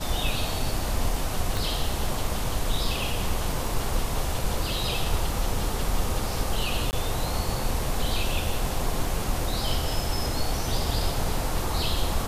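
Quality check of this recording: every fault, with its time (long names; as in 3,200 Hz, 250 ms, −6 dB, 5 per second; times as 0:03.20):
0:01.57: click
0:06.91–0:06.93: drop-out 19 ms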